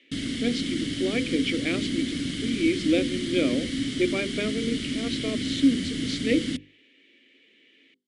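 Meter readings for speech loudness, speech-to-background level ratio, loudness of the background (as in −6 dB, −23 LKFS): −28.0 LKFS, 1.5 dB, −29.5 LKFS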